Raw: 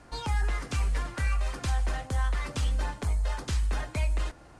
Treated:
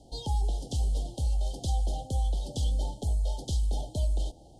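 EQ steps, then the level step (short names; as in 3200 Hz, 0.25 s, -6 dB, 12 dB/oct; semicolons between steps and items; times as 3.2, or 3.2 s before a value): Chebyshev band-stop 840–3100 Hz, order 5; 0.0 dB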